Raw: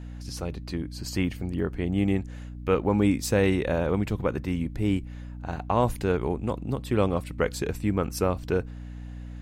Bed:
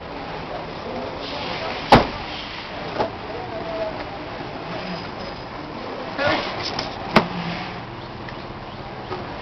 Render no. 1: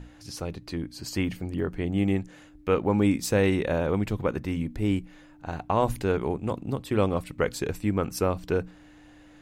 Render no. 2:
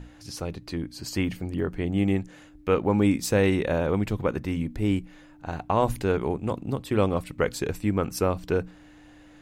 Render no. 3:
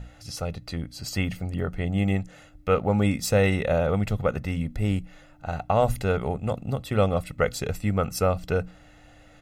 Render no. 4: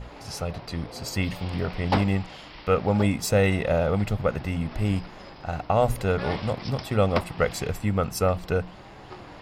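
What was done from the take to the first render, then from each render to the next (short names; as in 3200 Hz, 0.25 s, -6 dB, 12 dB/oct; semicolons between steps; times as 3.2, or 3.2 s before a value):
notches 60/120/180/240 Hz
gain +1 dB
comb 1.5 ms, depth 65%
add bed -13 dB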